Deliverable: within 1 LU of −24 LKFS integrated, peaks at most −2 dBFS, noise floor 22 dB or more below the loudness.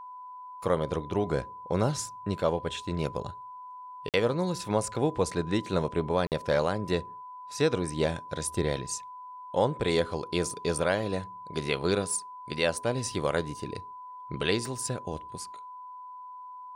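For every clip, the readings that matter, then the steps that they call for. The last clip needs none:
number of dropouts 2; longest dropout 48 ms; interfering tone 1,000 Hz; level of the tone −41 dBFS; integrated loudness −30.0 LKFS; sample peak −12.5 dBFS; target loudness −24.0 LKFS
→ repair the gap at 0:04.09/0:06.27, 48 ms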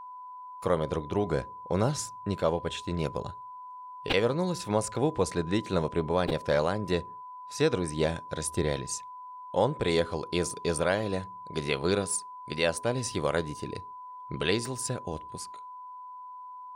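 number of dropouts 0; interfering tone 1,000 Hz; level of the tone −41 dBFS
→ notch filter 1,000 Hz, Q 30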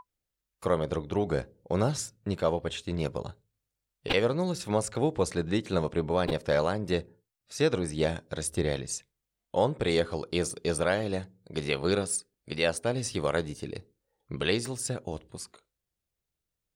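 interfering tone none found; integrated loudness −30.0 LKFS; sample peak −12.0 dBFS; target loudness −24.0 LKFS
→ level +6 dB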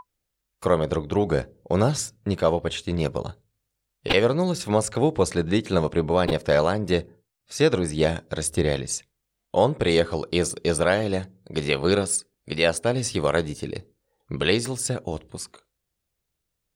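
integrated loudness −24.0 LKFS; sample peak −6.0 dBFS; background noise floor −80 dBFS

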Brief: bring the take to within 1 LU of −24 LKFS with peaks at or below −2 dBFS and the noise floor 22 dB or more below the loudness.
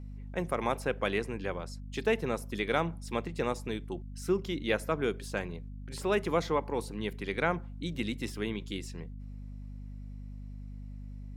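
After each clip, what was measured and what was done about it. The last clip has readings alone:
mains hum 50 Hz; hum harmonics up to 250 Hz; level of the hum −40 dBFS; integrated loudness −33.5 LKFS; sample peak −12.5 dBFS; target loudness −24.0 LKFS
→ mains-hum notches 50/100/150/200/250 Hz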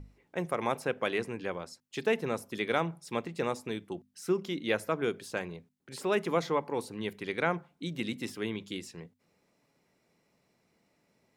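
mains hum none found; integrated loudness −33.5 LKFS; sample peak −12.5 dBFS; target loudness −24.0 LKFS
→ level +9.5 dB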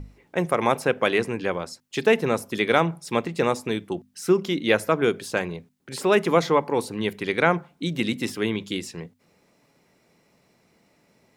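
integrated loudness −24.0 LKFS; sample peak −3.0 dBFS; background noise floor −64 dBFS

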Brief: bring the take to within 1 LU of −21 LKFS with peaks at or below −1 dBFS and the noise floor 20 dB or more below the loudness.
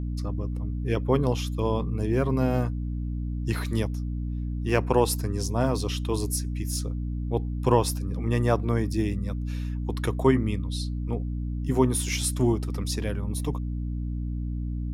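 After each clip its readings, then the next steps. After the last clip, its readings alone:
mains hum 60 Hz; hum harmonics up to 300 Hz; level of the hum −27 dBFS; integrated loudness −27.5 LKFS; sample peak −6.0 dBFS; target loudness −21.0 LKFS
→ hum removal 60 Hz, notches 5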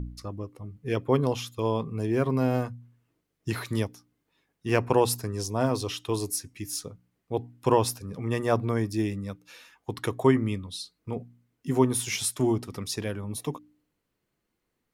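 mains hum none found; integrated loudness −28.5 LKFS; sample peak −7.5 dBFS; target loudness −21.0 LKFS
→ level +7.5 dB
brickwall limiter −1 dBFS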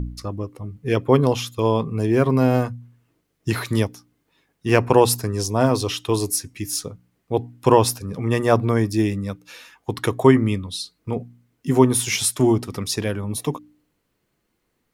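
integrated loudness −21.0 LKFS; sample peak −1.0 dBFS; background noise floor −72 dBFS

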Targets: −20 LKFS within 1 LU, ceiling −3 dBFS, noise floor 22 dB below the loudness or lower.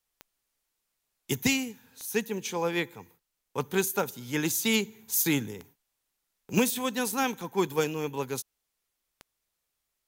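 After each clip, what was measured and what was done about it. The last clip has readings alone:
number of clicks 6; integrated loudness −29.0 LKFS; sample peak −13.0 dBFS; target loudness −20.0 LKFS
→ click removal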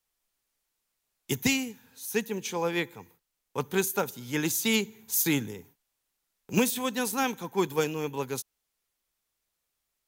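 number of clicks 0; integrated loudness −29.0 LKFS; sample peak −13.0 dBFS; target loudness −20.0 LKFS
→ level +9 dB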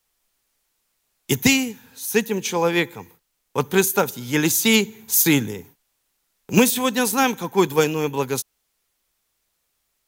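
integrated loudness −20.0 LKFS; sample peak −3.5 dBFS; background noise floor −73 dBFS

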